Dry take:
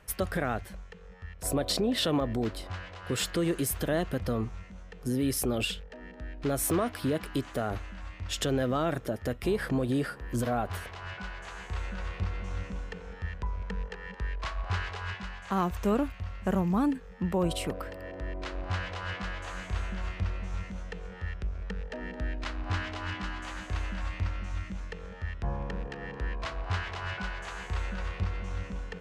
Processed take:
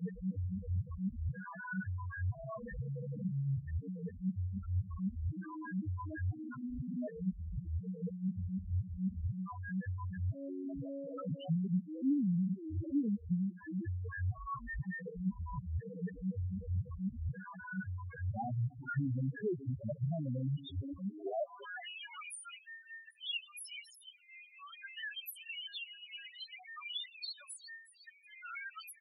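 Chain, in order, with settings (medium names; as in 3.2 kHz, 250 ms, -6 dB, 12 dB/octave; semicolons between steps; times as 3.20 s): reverse the whole clip; high-pass sweep 130 Hz -> 2.4 kHz, 20.93–21.88 s; frequency-shifting echo 361 ms, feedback 39%, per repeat +140 Hz, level -20 dB; FDN reverb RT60 2.3 s, low-frequency decay 0.7×, high-frequency decay 0.5×, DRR 20 dB; compression 12:1, threshold -34 dBFS, peak gain reduction 14.5 dB; loudest bins only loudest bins 2; trim +6 dB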